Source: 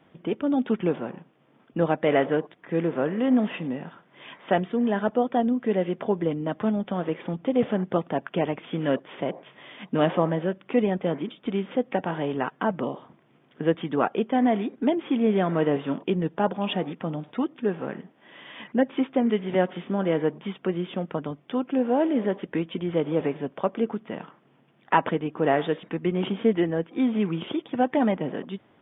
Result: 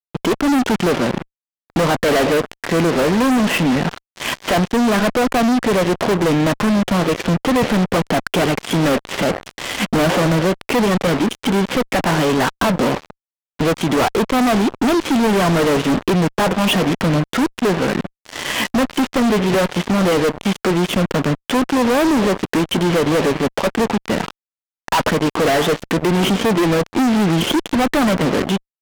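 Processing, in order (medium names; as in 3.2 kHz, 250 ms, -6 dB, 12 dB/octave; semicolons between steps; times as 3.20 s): in parallel at +2 dB: compression 16:1, threshold -35 dBFS, peak gain reduction 21.5 dB; on the sum: fuzz box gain 37 dB, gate -37 dBFS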